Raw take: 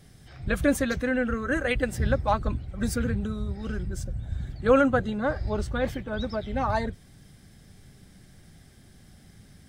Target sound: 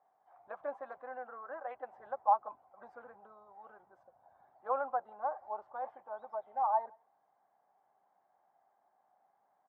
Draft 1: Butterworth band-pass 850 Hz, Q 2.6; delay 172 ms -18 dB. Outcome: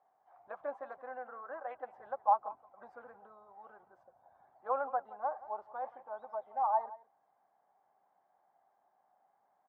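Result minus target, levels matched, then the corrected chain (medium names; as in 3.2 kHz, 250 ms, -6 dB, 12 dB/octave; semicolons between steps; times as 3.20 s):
echo-to-direct +12 dB
Butterworth band-pass 850 Hz, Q 2.6; delay 172 ms -30 dB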